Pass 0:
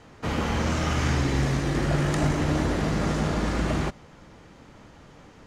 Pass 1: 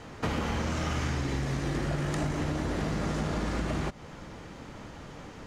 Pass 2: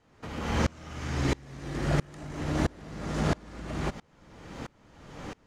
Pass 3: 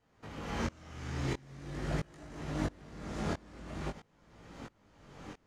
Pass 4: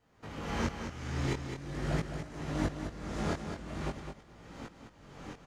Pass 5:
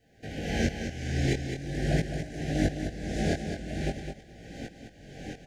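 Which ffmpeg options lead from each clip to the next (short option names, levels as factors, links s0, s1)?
-af "acompressor=threshold=0.0251:ratio=10,volume=1.78"
-af "aeval=exprs='val(0)*pow(10,-30*if(lt(mod(-1.5*n/s,1),2*abs(-1.5)/1000),1-mod(-1.5*n/s,1)/(2*abs(-1.5)/1000),(mod(-1.5*n/s,1)-2*abs(-1.5)/1000)/(1-2*abs(-1.5)/1000))/20)':c=same,volume=2.51"
-af "flanger=delay=17.5:depth=6.3:speed=0.45,volume=0.596"
-af "aecho=1:1:210|420:0.422|0.0633,volume=1.26"
-af "asuperstop=centerf=1100:order=20:qfactor=1.6,volume=2"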